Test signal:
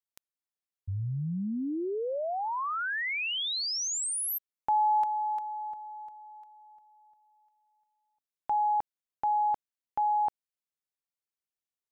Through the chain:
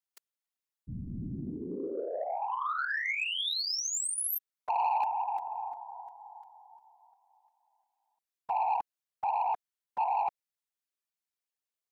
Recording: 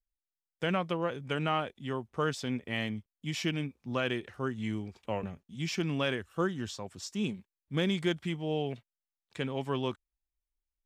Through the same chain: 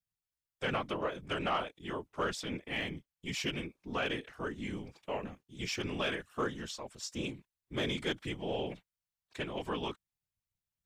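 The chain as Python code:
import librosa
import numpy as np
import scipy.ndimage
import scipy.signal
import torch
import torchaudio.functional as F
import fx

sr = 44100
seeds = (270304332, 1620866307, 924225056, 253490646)

y = fx.whisperise(x, sr, seeds[0])
y = fx.low_shelf(y, sr, hz=380.0, db=-7.5)
y = 10.0 ** (-22.0 / 20.0) * np.tanh(y / 10.0 ** (-22.0 / 20.0))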